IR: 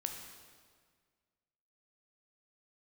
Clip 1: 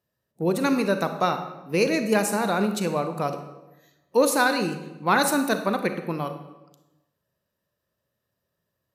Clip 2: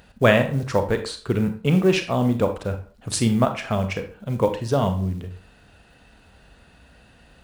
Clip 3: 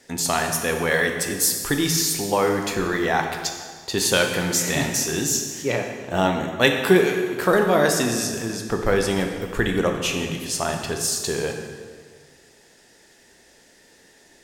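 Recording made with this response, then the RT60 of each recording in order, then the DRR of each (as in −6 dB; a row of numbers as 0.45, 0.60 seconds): 3; 1.0, 0.45, 1.8 seconds; 8.0, 7.0, 3.5 decibels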